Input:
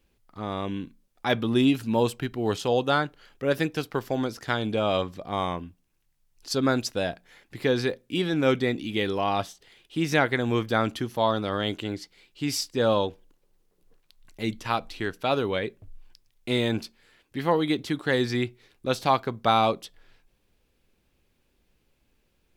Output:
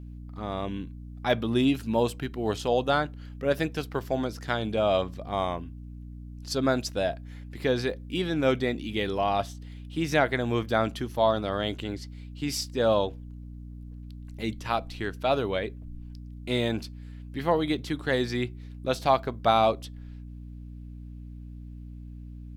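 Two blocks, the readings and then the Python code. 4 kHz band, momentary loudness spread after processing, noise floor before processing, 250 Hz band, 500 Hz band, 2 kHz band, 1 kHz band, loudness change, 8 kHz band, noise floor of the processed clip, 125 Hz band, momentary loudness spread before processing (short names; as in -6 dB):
-2.5 dB, 19 LU, -70 dBFS, -2.5 dB, 0.0 dB, -2.5 dB, -1.0 dB, -1.5 dB, -2.5 dB, -42 dBFS, -1.0 dB, 12 LU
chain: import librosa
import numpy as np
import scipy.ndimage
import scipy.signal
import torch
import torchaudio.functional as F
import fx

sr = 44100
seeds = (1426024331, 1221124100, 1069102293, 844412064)

y = fx.dynamic_eq(x, sr, hz=650.0, q=4.9, threshold_db=-41.0, ratio=4.0, max_db=7)
y = fx.add_hum(y, sr, base_hz=60, snr_db=12)
y = y * 10.0 ** (-2.5 / 20.0)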